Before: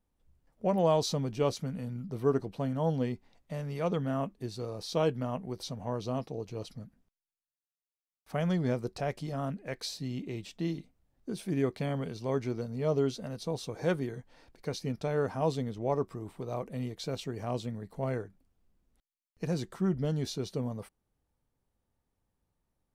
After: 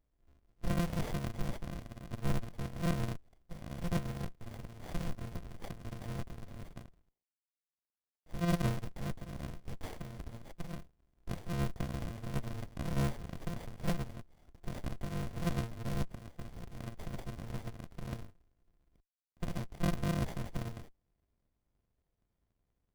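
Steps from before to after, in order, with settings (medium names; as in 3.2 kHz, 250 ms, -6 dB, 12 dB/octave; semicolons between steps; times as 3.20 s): bit-reversed sample order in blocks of 128 samples; sliding maximum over 33 samples; trim +2 dB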